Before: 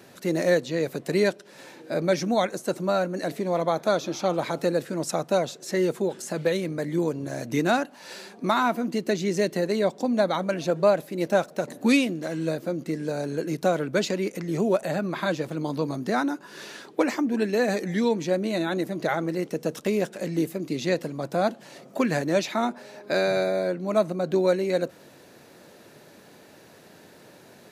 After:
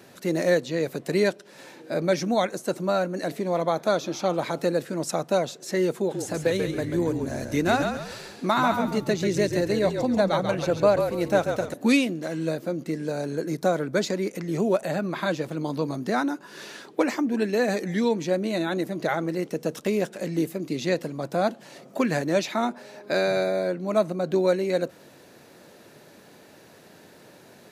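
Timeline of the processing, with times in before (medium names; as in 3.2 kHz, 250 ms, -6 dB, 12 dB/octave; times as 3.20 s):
5.97–11.74 s: frequency-shifting echo 138 ms, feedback 36%, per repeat -45 Hz, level -6 dB
13.35–14.29 s: peaking EQ 2.8 kHz -9 dB 0.31 oct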